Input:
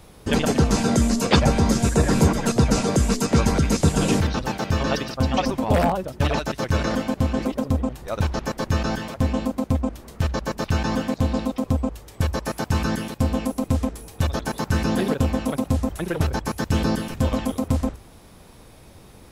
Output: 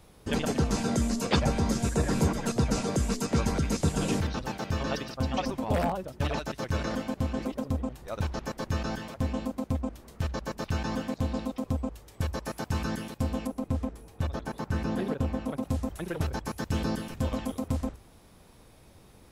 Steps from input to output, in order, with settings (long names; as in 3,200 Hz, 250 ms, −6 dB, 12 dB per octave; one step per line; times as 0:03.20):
0:13.47–0:15.63: high-shelf EQ 3,000 Hz −9 dB
level −8 dB